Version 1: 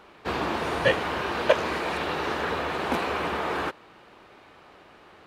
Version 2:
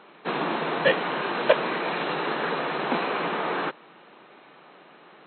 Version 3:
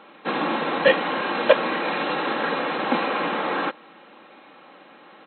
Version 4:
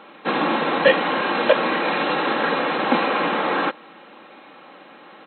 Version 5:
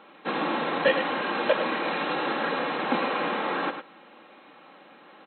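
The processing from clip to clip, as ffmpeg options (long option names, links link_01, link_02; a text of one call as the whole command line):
ffmpeg -i in.wav -af "afftfilt=real='re*between(b*sr/4096,130,4200)':imag='im*between(b*sr/4096,130,4200)':win_size=4096:overlap=0.75,volume=1dB" out.wav
ffmpeg -i in.wav -af "aecho=1:1:3.7:0.49,volume=2dB" out.wav
ffmpeg -i in.wav -af "alimiter=level_in=6dB:limit=-1dB:release=50:level=0:latency=1,volume=-2.5dB" out.wav
ffmpeg -i in.wav -af "aecho=1:1:105:0.376,volume=-7dB" out.wav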